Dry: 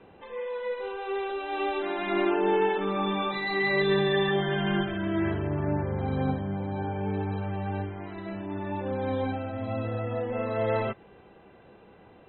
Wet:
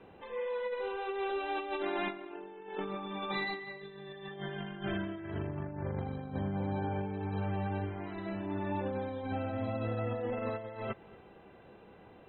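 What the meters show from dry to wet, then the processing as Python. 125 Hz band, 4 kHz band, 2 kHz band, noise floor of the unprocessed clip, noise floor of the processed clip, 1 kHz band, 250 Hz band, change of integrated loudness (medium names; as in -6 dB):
-6.5 dB, -10.0 dB, -9.5 dB, -54 dBFS, -56 dBFS, -7.5 dB, -8.0 dB, -8.5 dB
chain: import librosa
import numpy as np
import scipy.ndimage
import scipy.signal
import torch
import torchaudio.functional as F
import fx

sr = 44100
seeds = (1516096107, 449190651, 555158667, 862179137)

p1 = fx.over_compress(x, sr, threshold_db=-31.0, ratio=-0.5)
p2 = p1 + fx.echo_single(p1, sr, ms=231, db=-23.0, dry=0)
y = F.gain(torch.from_numpy(p2), -5.0).numpy()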